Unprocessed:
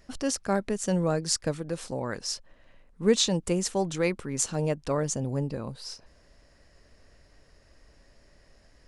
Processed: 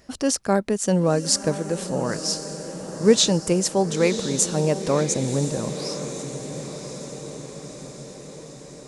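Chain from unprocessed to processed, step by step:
high-pass filter 130 Hz 6 dB per octave
parametric band 2,000 Hz −3.5 dB 2.3 octaves
feedback delay with all-pass diffusion 1,030 ms, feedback 61%, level −10.5 dB
level +7.5 dB

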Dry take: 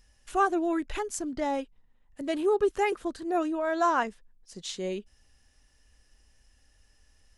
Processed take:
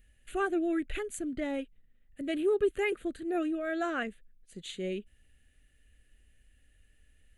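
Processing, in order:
phaser with its sweep stopped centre 2,300 Hz, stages 4

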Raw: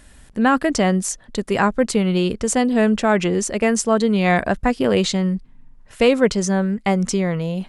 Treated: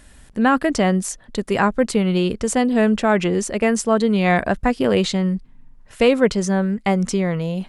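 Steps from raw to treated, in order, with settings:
dynamic equaliser 6,400 Hz, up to −4 dB, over −37 dBFS, Q 1.2

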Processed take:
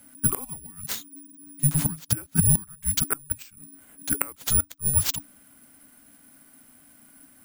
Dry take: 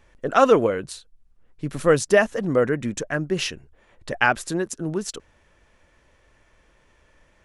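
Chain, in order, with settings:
high-shelf EQ 3,300 Hz +3 dB
bad sample-rate conversion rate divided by 4×, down none, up zero stuff
gate with flip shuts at −2 dBFS, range −27 dB
frequency shifter −290 Hz
0:00.92–0:02.57: parametric band 160 Hz +10.5 dB 0.97 octaves
level −1.5 dB

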